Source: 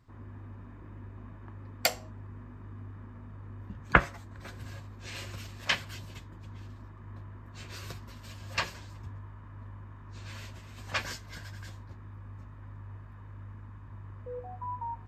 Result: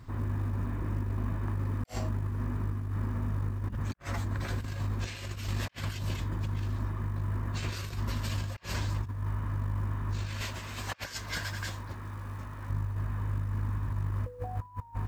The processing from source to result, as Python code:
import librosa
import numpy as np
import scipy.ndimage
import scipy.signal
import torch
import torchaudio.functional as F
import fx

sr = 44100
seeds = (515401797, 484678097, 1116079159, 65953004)

y = fx.quant_float(x, sr, bits=4)
y = fx.low_shelf(y, sr, hz=270.0, db=-10.5, at=(10.41, 12.7))
y = fx.over_compress(y, sr, threshold_db=-45.0, ratio=-0.5)
y = fx.low_shelf(y, sr, hz=130.0, db=5.0)
y = y * 10.0 ** (7.5 / 20.0)